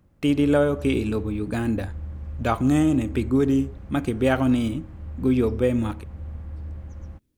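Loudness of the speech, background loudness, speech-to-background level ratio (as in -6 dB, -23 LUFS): -23.0 LUFS, -37.5 LUFS, 14.5 dB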